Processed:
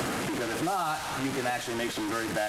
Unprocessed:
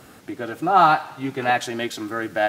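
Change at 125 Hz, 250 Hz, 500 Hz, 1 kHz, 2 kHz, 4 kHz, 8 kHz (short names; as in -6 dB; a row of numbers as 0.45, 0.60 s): -3.5, -3.5, -7.0, -12.0, -6.5, -2.5, +3.0 dB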